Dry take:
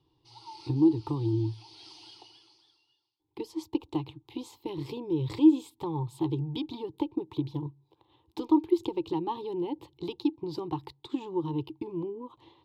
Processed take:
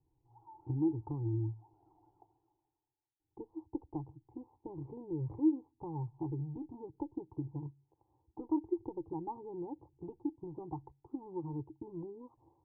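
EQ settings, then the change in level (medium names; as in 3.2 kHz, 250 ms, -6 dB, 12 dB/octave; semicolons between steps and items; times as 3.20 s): four-pole ladder low-pass 920 Hz, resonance 60%; tilt EQ -4 dB/octave; -7.0 dB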